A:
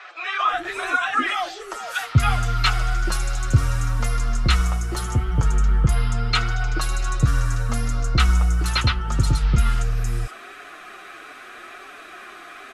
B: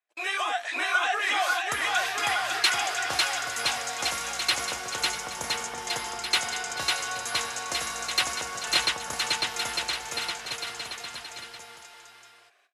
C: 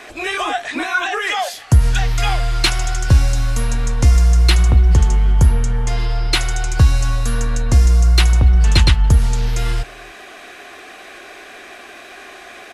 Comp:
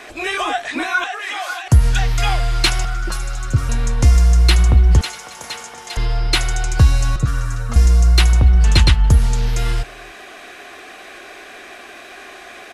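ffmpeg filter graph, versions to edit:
-filter_complex "[1:a]asplit=2[s0][s1];[0:a]asplit=2[s2][s3];[2:a]asplit=5[s4][s5][s6][s7][s8];[s4]atrim=end=1.042[s9];[s0]atrim=start=1.038:end=1.682[s10];[s5]atrim=start=1.678:end=2.852[s11];[s2]atrim=start=2.848:end=3.692[s12];[s6]atrim=start=3.688:end=5.012[s13];[s1]atrim=start=5.008:end=5.972[s14];[s7]atrim=start=5.968:end=7.162[s15];[s3]atrim=start=7.158:end=7.762[s16];[s8]atrim=start=7.758[s17];[s9][s10]acrossfade=d=0.004:c1=hsin:c2=hsin[s18];[s18][s11]acrossfade=d=0.004:c1=hsin:c2=hsin[s19];[s19][s12]acrossfade=d=0.004:c1=hsin:c2=hsin[s20];[s20][s13]acrossfade=d=0.004:c1=hsin:c2=hsin[s21];[s21][s14]acrossfade=d=0.004:c1=hsin:c2=hsin[s22];[s22][s15]acrossfade=d=0.004:c1=hsin:c2=hsin[s23];[s23][s16]acrossfade=d=0.004:c1=hsin:c2=hsin[s24];[s24][s17]acrossfade=d=0.004:c1=hsin:c2=hsin"

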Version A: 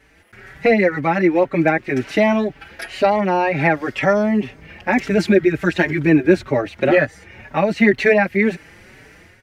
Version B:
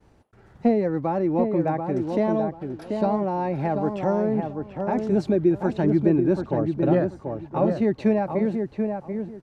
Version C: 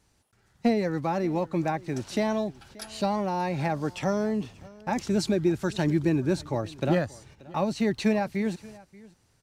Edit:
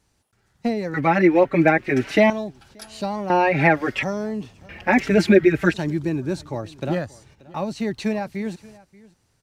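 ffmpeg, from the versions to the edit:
-filter_complex "[0:a]asplit=3[s0][s1][s2];[2:a]asplit=4[s3][s4][s5][s6];[s3]atrim=end=0.942[s7];[s0]atrim=start=0.938:end=2.302[s8];[s4]atrim=start=2.298:end=3.302[s9];[s1]atrim=start=3.298:end=4.032[s10];[s5]atrim=start=4.028:end=4.692[s11];[s2]atrim=start=4.688:end=5.742[s12];[s6]atrim=start=5.738[s13];[s7][s8]acrossfade=d=0.004:c1=hsin:c2=hsin[s14];[s14][s9]acrossfade=d=0.004:c1=hsin:c2=hsin[s15];[s15][s10]acrossfade=d=0.004:c1=hsin:c2=hsin[s16];[s16][s11]acrossfade=d=0.004:c1=hsin:c2=hsin[s17];[s17][s12]acrossfade=d=0.004:c1=hsin:c2=hsin[s18];[s18][s13]acrossfade=d=0.004:c1=hsin:c2=hsin"

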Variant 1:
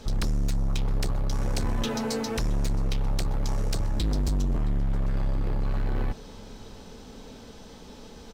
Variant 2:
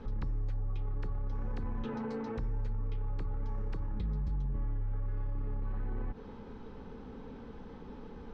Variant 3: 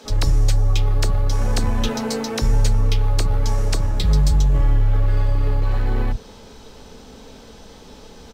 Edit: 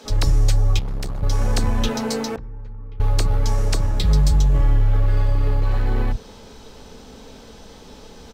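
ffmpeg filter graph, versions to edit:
-filter_complex "[2:a]asplit=3[s0][s1][s2];[s0]atrim=end=0.792[s3];[0:a]atrim=start=0.788:end=1.232[s4];[s1]atrim=start=1.228:end=2.362[s5];[1:a]atrim=start=2.358:end=3.002[s6];[s2]atrim=start=2.998[s7];[s3][s4]acrossfade=d=0.004:c1=hsin:c2=hsin[s8];[s8][s5]acrossfade=d=0.004:c1=hsin:c2=hsin[s9];[s9][s6]acrossfade=d=0.004:c1=hsin:c2=hsin[s10];[s10][s7]acrossfade=d=0.004:c1=hsin:c2=hsin"

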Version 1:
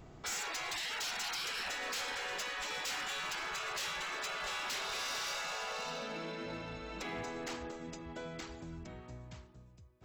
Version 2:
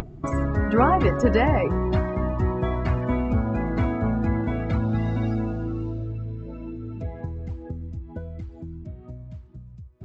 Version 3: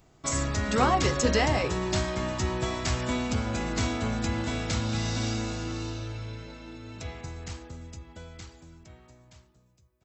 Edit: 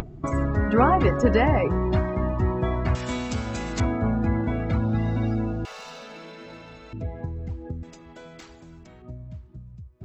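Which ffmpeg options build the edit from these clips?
-filter_complex "[0:a]asplit=2[s0][s1];[1:a]asplit=4[s2][s3][s4][s5];[s2]atrim=end=2.952[s6];[2:a]atrim=start=2.948:end=3.802[s7];[s3]atrim=start=3.798:end=5.652[s8];[s0]atrim=start=5.648:end=6.932[s9];[s4]atrim=start=6.928:end=7.832[s10];[s1]atrim=start=7.828:end=9.022[s11];[s5]atrim=start=9.018[s12];[s6][s7]acrossfade=d=0.004:c1=hsin:c2=hsin[s13];[s13][s8]acrossfade=d=0.004:c1=hsin:c2=hsin[s14];[s14][s9]acrossfade=d=0.004:c1=hsin:c2=hsin[s15];[s15][s10]acrossfade=d=0.004:c1=hsin:c2=hsin[s16];[s16][s11]acrossfade=d=0.004:c1=hsin:c2=hsin[s17];[s17][s12]acrossfade=d=0.004:c1=hsin:c2=hsin"

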